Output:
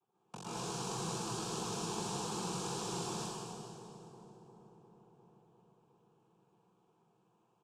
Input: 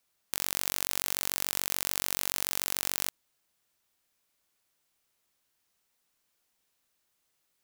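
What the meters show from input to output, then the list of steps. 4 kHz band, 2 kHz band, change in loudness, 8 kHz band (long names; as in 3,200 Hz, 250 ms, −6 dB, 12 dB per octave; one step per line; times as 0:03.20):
−8.0 dB, −12.0 dB, −9.5 dB, −9.0 dB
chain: low-pass that shuts in the quiet parts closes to 920 Hz, open at −41 dBFS
low-pass filter 1,900 Hz 6 dB per octave
low shelf with overshoot 640 Hz +8 dB, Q 1.5
comb filter 1.4 ms, depth 97%
downward compressor 6 to 1, threshold −39 dBFS, peak gain reduction 10 dB
cochlear-implant simulation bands 4
phaser with its sweep stopped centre 400 Hz, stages 8
delay with a low-pass on its return 353 ms, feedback 70%, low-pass 700 Hz, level −11 dB
dense smooth reverb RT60 2.3 s, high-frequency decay 0.95×, pre-delay 105 ms, DRR −9.5 dB
level +1 dB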